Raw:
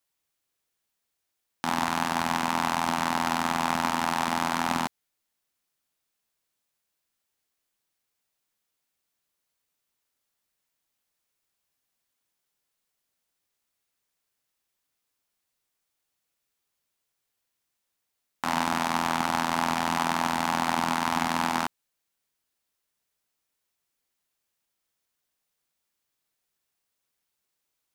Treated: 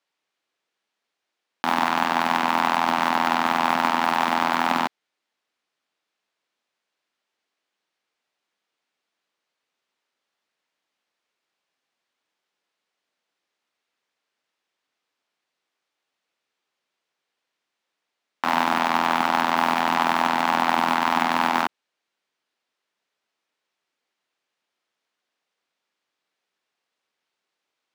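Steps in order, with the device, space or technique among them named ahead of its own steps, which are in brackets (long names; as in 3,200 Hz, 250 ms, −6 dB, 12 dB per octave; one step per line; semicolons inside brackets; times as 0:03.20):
early digital voice recorder (band-pass filter 260–3,800 Hz; one scale factor per block 7 bits)
high-shelf EQ 11,000 Hz +4 dB
level +6 dB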